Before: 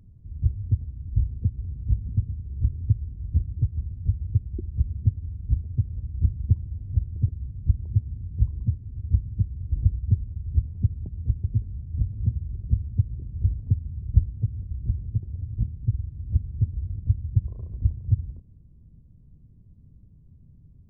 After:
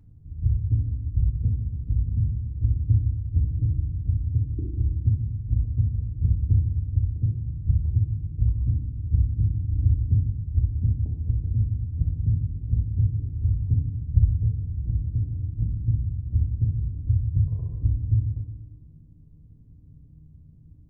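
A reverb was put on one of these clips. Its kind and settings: FDN reverb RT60 0.98 s, low-frequency decay 1.45×, high-frequency decay 0.25×, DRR 1 dB; gain -2.5 dB

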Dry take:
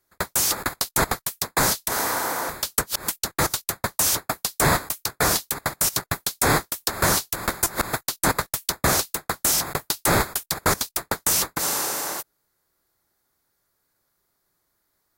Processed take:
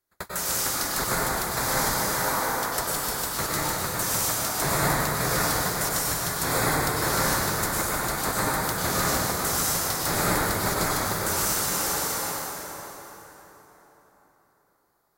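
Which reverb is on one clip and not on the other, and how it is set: plate-style reverb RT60 4.2 s, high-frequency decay 0.65×, pre-delay 85 ms, DRR -8 dB; gain -9.5 dB

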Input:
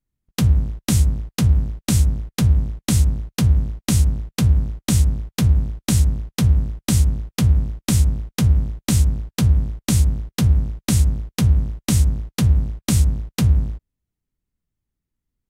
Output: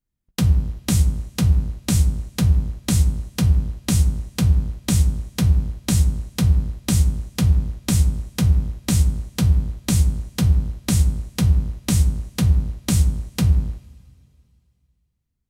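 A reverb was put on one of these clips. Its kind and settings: two-slope reverb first 0.37 s, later 2.6 s, from -19 dB, DRR 10.5 dB; gain -1.5 dB

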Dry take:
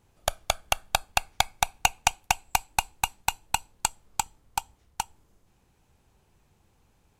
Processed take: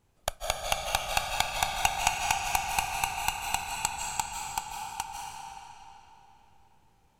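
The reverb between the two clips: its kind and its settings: digital reverb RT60 3.3 s, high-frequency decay 0.85×, pre-delay 0.12 s, DRR -1 dB; gain -4.5 dB

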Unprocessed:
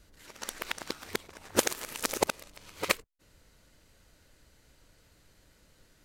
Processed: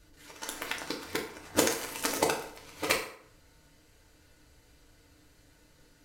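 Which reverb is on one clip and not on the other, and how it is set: FDN reverb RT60 0.65 s, low-frequency decay 0.85×, high-frequency decay 0.7×, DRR -1 dB; gain -2 dB

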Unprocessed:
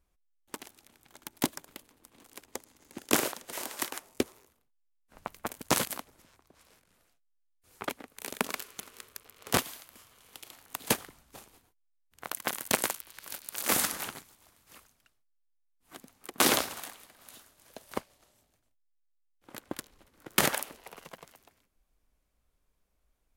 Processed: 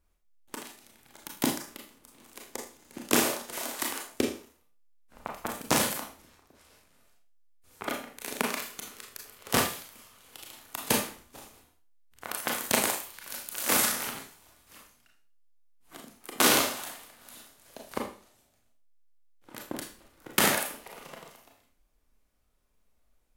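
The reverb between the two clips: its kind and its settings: Schroeder reverb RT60 0.4 s, combs from 26 ms, DRR 0 dB

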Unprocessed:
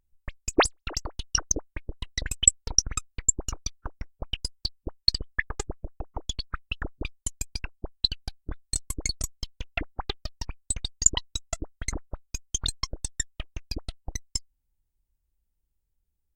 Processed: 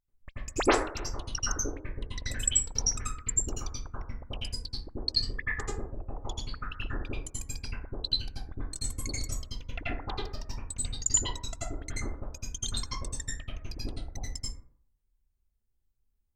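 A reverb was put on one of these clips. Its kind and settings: plate-style reverb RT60 0.58 s, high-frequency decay 0.35×, pre-delay 75 ms, DRR -9 dB; gain -11.5 dB

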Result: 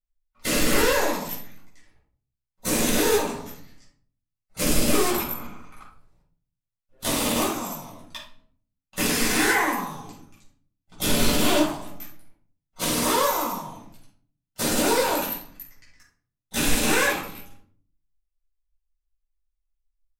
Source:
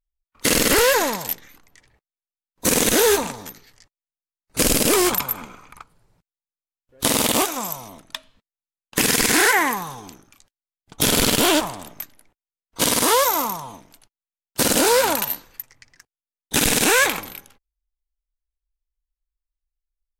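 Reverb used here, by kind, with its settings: shoebox room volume 510 m³, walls furnished, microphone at 6.9 m; gain -14.5 dB

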